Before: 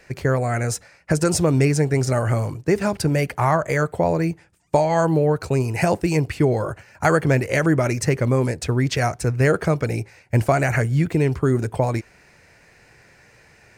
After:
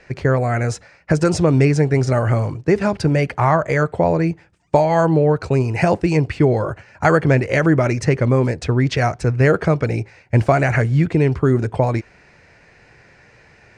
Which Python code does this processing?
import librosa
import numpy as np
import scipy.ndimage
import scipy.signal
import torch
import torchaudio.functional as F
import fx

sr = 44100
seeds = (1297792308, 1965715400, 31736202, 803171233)

y = fx.quant_dither(x, sr, seeds[0], bits=8, dither='none', at=(10.36, 11.06))
y = fx.air_absorb(y, sr, metres=100.0)
y = F.gain(torch.from_numpy(y), 3.5).numpy()